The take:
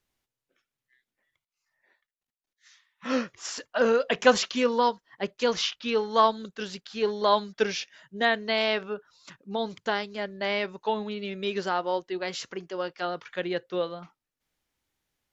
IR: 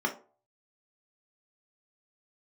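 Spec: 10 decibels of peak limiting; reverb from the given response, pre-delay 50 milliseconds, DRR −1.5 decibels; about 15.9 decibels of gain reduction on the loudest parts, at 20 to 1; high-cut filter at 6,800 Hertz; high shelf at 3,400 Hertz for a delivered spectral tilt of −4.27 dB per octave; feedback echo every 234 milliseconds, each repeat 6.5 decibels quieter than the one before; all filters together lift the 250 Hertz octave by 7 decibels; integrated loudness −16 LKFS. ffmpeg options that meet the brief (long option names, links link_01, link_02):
-filter_complex "[0:a]lowpass=6800,equalizer=frequency=250:width_type=o:gain=8,highshelf=frequency=3400:gain=9,acompressor=threshold=-25dB:ratio=20,alimiter=limit=-23dB:level=0:latency=1,aecho=1:1:234|468|702|936|1170|1404:0.473|0.222|0.105|0.0491|0.0231|0.0109,asplit=2[link_01][link_02];[1:a]atrim=start_sample=2205,adelay=50[link_03];[link_02][link_03]afir=irnorm=-1:irlink=0,volume=-7.5dB[link_04];[link_01][link_04]amix=inputs=2:normalize=0,volume=13.5dB"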